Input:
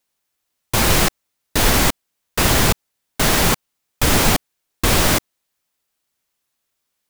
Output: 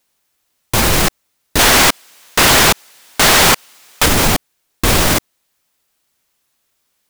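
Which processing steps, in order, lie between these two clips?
limiter -11.5 dBFS, peak gain reduction 9 dB; 1.59–4.06 overdrive pedal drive 31 dB, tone 6900 Hz, clips at -11.5 dBFS; gain +8.5 dB

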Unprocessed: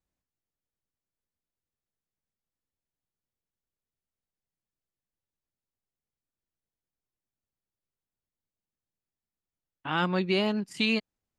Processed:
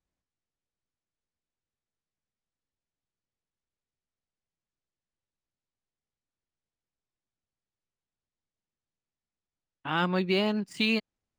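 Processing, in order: median filter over 3 samples

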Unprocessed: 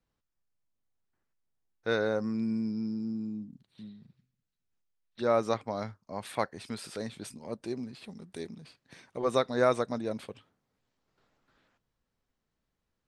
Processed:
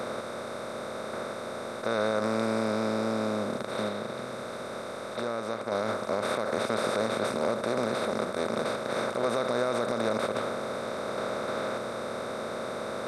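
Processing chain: per-bin compression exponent 0.2; 3.88–5.72 compressor 3:1, threshold -28 dBFS, peak gain reduction 9.5 dB; limiter -14 dBFS, peak gain reduction 9 dB; gain -3 dB

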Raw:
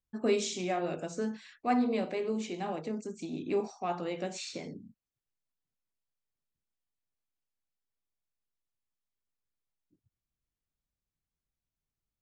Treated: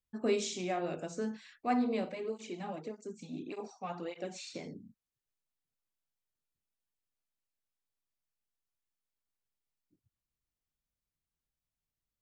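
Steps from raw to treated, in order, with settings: 2.09–4.55 tape flanging out of phase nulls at 1.7 Hz, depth 3.2 ms; gain -2.5 dB

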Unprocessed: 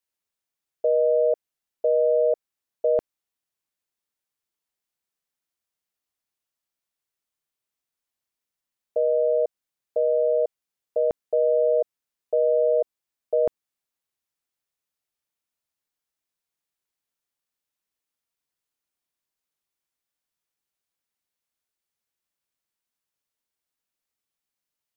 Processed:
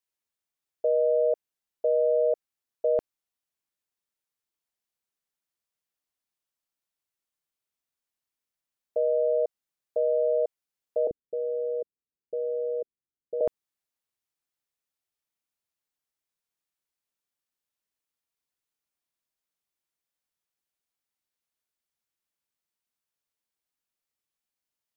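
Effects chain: 11.07–13.41 inverse Chebyshev low-pass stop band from 930 Hz, stop band 40 dB; gain -3 dB

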